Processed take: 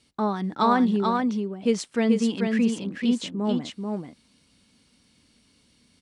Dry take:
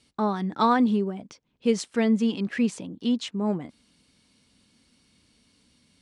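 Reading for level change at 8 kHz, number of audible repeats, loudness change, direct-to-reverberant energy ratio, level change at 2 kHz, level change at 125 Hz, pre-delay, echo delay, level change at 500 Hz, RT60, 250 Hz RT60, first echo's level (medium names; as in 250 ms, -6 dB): +1.5 dB, 1, +1.0 dB, no reverb, +1.5 dB, +1.5 dB, no reverb, 437 ms, +1.5 dB, no reverb, no reverb, -4.0 dB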